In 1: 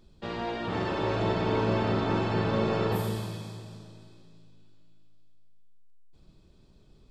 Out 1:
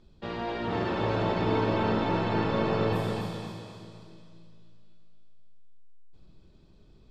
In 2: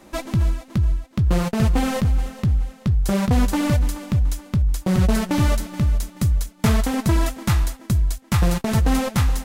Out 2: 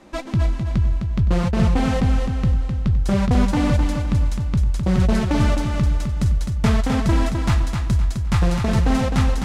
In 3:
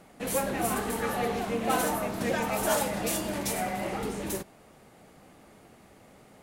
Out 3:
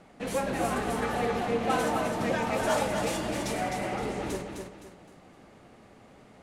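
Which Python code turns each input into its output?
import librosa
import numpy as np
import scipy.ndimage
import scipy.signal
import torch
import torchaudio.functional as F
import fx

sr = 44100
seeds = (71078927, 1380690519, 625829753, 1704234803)

y = fx.air_absorb(x, sr, metres=61.0)
y = fx.echo_feedback(y, sr, ms=258, feedback_pct=35, wet_db=-5.5)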